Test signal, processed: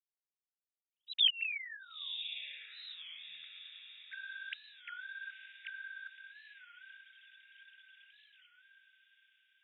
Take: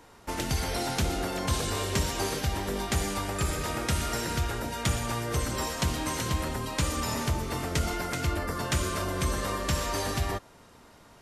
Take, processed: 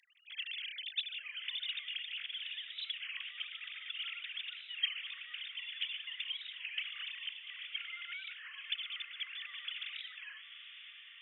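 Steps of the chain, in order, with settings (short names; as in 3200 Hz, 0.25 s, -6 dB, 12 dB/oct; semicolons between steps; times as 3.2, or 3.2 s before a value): sine-wave speech; inverse Chebyshev high-pass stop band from 900 Hz, stop band 60 dB; diffused feedback echo 0.949 s, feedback 54%, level -9.5 dB; record warp 33 1/3 rpm, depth 160 cents; gain +3 dB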